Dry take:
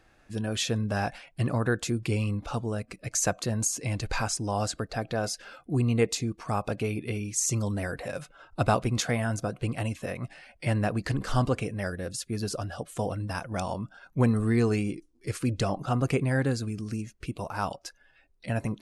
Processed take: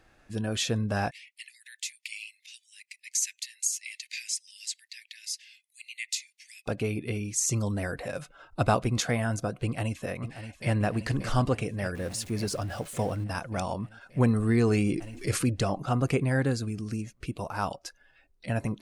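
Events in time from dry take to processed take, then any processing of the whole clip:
1.11–6.66 steep high-pass 1900 Hz 96 dB/oct
9.64–10.71 echo throw 0.58 s, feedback 75%, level -11 dB
11.95–13.24 zero-crossing step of -42 dBFS
14.49–15.49 fast leveller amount 50%

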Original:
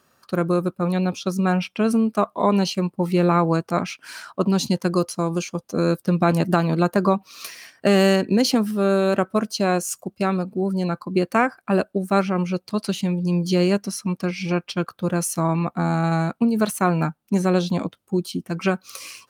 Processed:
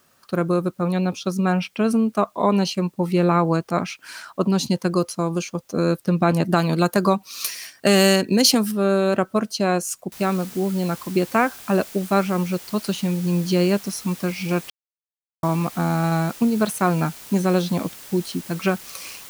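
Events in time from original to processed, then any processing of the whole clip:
6.56–8.72 high shelf 3600 Hz +12 dB
10.12 noise floor step -64 dB -41 dB
14.7–15.43 mute

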